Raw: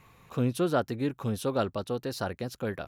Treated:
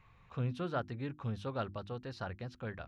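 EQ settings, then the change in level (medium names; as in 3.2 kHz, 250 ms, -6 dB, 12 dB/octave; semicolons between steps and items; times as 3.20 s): tape spacing loss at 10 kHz 32 dB; peaking EQ 360 Hz -13.5 dB 2.9 oct; hum notches 50/100/150/200/250/300/350 Hz; +2.5 dB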